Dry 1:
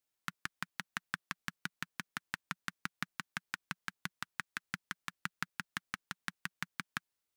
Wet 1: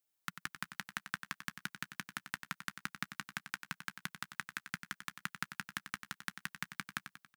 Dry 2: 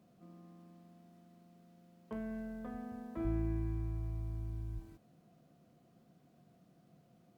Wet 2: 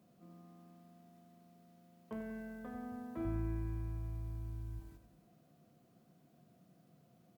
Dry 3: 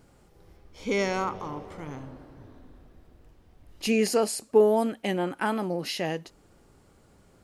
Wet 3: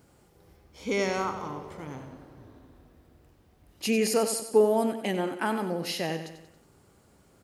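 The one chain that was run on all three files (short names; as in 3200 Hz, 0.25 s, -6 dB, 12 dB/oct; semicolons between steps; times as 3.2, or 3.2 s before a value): HPF 55 Hz 12 dB/oct; high shelf 10000 Hz +7 dB; feedback echo 93 ms, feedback 49%, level -10 dB; gain -1.5 dB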